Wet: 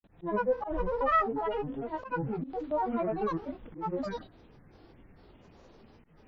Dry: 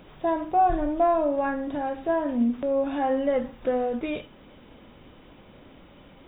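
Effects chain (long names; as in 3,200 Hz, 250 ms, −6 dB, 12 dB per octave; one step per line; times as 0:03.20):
low-shelf EQ 310 Hz +7 dB
hum removal 91.86 Hz, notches 3
granular cloud 100 ms, grains 20 per second, pitch spread up and down by 12 semitones
dynamic equaliser 1,400 Hz, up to +3 dB, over −35 dBFS, Q 1.2
volume swells 125 ms
harmonic and percussive parts rebalanced percussive −8 dB
level −5.5 dB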